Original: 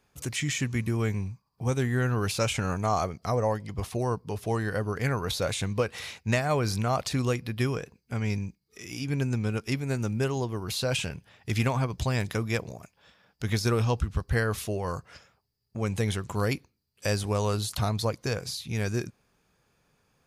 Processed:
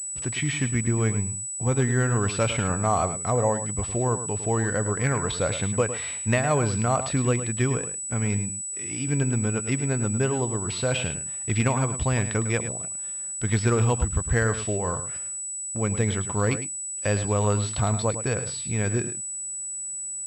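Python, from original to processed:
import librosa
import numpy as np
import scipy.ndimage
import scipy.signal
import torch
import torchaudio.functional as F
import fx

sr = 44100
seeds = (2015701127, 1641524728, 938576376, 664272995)

p1 = x + fx.echo_single(x, sr, ms=106, db=-11.0, dry=0)
p2 = fx.pwm(p1, sr, carrier_hz=7900.0)
y = F.gain(torch.from_numpy(p2), 3.0).numpy()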